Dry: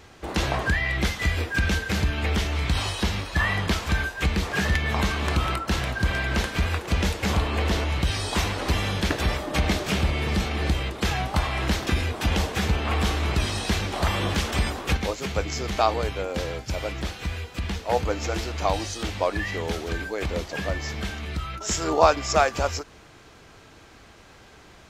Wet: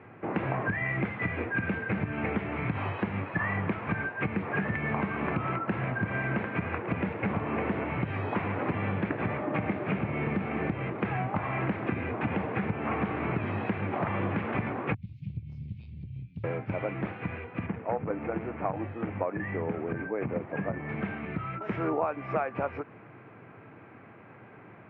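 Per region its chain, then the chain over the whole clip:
14.94–16.44 inverse Chebyshev band-stop 500–1200 Hz, stop band 80 dB + low shelf 84 Hz +11.5 dB + compressor 5:1, threshold -26 dBFS
17.66–20.89 air absorption 400 m + core saturation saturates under 350 Hz
whole clip: Chebyshev band-pass 110–2400 Hz, order 4; tilt -1.5 dB/oct; compressor, threshold -26 dBFS

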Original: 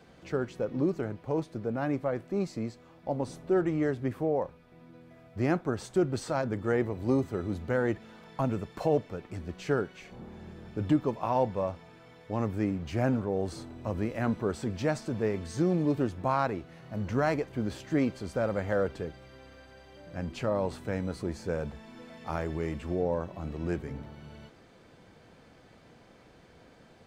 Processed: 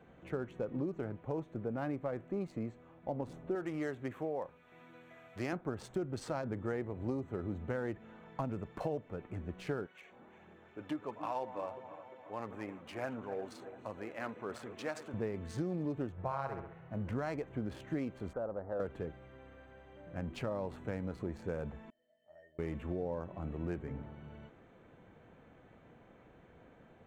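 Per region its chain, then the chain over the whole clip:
3.55–5.53 tilt +2.5 dB/oct + mismatched tape noise reduction encoder only
9.86–15.14 regenerating reverse delay 0.175 s, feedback 71%, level -13 dB + phaser 1.5 Hz, delay 4 ms, feedback 27% + HPF 930 Hz 6 dB/oct
16.12–16.91 LPF 2100 Hz 6 dB/oct + bell 260 Hz -15 dB 0.53 oct + flutter echo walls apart 11.3 m, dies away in 0.56 s
18.33–18.8 steep low-pass 1800 Hz + treble ducked by the level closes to 810 Hz, closed at -28.5 dBFS + bell 130 Hz -12.5 dB 2.8 oct
21.9–22.59 self-modulated delay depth 0.071 ms + bell 1100 Hz -6 dB 0.94 oct + resonator 610 Hz, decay 0.19 s, harmonics odd, mix 100%
whole clip: Wiener smoothing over 9 samples; compressor, threshold -30 dBFS; gain -3 dB

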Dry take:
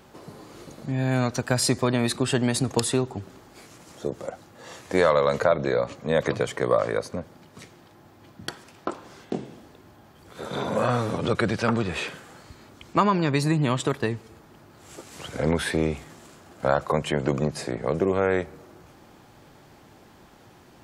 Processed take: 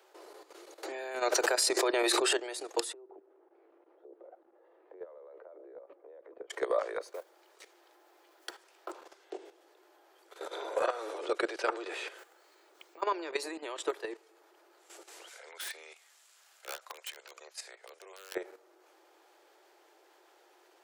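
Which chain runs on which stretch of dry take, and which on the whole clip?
0.83–2.33 notch 3400 Hz, Q 23 + fast leveller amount 100%
2.93–6.5 compressor 5:1, threshold -30 dBFS + band-pass 300 Hz, Q 0.76 + air absorption 380 m
7.01–8.92 resonant low shelf 160 Hz +8 dB, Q 3 + modulation noise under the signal 28 dB
12.18–13.02 careless resampling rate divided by 2×, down none, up hold + compressor 4:1, threshold -38 dBFS
15.28–18.35 passive tone stack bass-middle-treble 10-0-10 + wrapped overs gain 25 dB + mismatched tape noise reduction encoder only
whole clip: steep high-pass 330 Hz 96 dB/oct; notch 1100 Hz, Q 18; level quantiser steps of 12 dB; gain -3.5 dB

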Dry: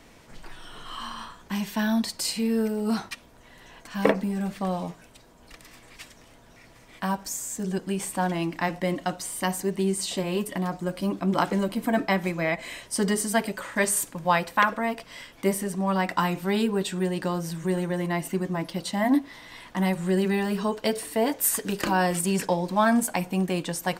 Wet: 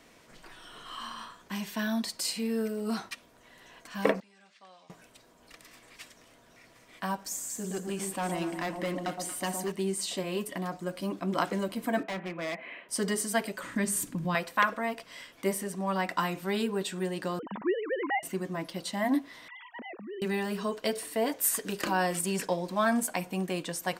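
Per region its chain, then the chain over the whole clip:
4.2–4.9 Gaussian blur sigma 1.8 samples + differentiator
7.2–9.72 overloaded stage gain 21.5 dB + echo with dull and thin repeats by turns 0.116 s, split 1000 Hz, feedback 59%, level -4.5 dB
12.03–12.89 CVSD 64 kbps + elliptic band-pass 180–2600 Hz + overloaded stage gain 27 dB
13.63–14.35 resonant low shelf 370 Hz +11.5 dB, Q 1.5 + compressor 2:1, threshold -23 dBFS
17.39–18.23 sine-wave speech + bell 950 Hz +13.5 dB 0.4 oct
19.48–20.22 sine-wave speech + dynamic EQ 1300 Hz, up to -4 dB, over -43 dBFS, Q 1 + compressor 4:1, threshold -36 dBFS
whole clip: low shelf 130 Hz -12 dB; notch 860 Hz, Q 12; gain -3.5 dB

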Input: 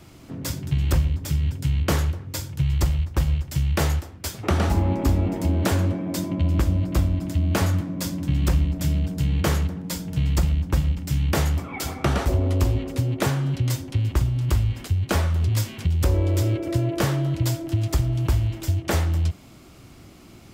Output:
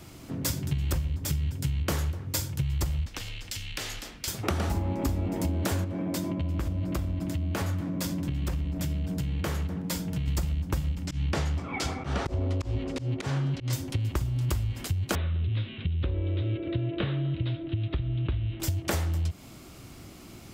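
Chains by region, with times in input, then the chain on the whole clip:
3.06–4.28 weighting filter D + frequency shift -43 Hz + compressor 4:1, threshold -35 dBFS
5.84–10.28 tone controls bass -1 dB, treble -5 dB + compressor 3:1, threshold -26 dBFS
11.06–13.73 LPF 5500 Hz + auto swell 0.157 s
15.15–18.6 rippled Chebyshev low-pass 3900 Hz, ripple 3 dB + bell 900 Hz -12 dB 1.2 oct
whole clip: compressor, threshold -25 dBFS; high shelf 5600 Hz +4.5 dB

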